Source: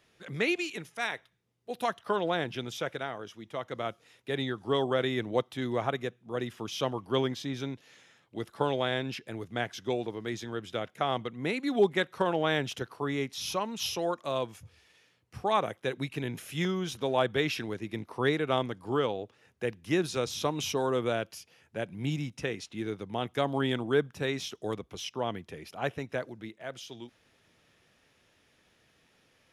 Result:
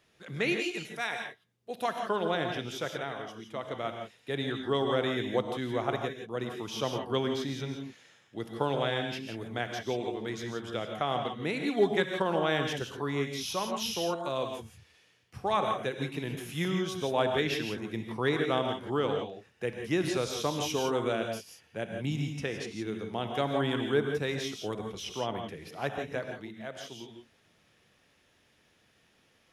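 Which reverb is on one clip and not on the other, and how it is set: gated-style reverb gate 190 ms rising, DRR 4 dB; trim -1.5 dB

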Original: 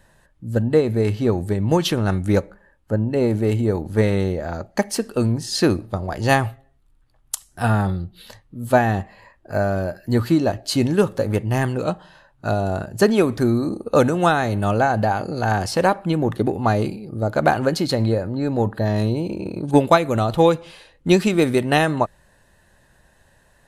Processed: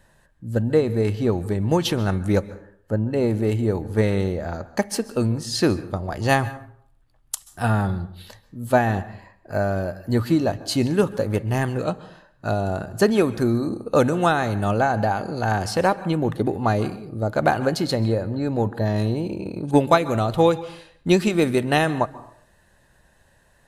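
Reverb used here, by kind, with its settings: plate-style reverb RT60 0.6 s, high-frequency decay 0.55×, pre-delay 120 ms, DRR 17 dB; trim -2 dB

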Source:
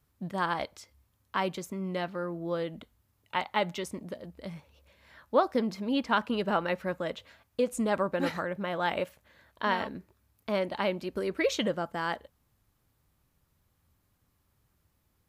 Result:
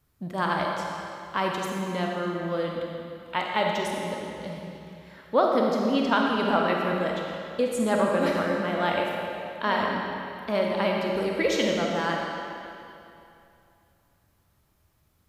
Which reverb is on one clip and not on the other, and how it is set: algorithmic reverb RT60 2.7 s, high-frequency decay 0.9×, pre-delay 5 ms, DRR -1 dB; trim +2 dB

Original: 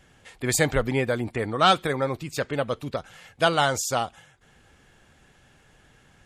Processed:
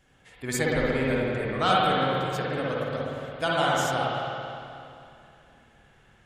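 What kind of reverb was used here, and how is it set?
spring tank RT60 2.6 s, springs 53/57 ms, chirp 30 ms, DRR -5.5 dB; trim -7.5 dB

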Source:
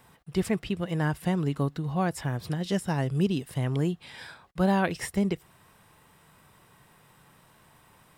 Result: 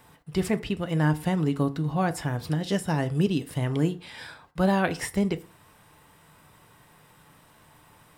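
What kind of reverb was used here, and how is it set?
FDN reverb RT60 0.4 s, low-frequency decay 0.9×, high-frequency decay 0.65×, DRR 10 dB; trim +2 dB

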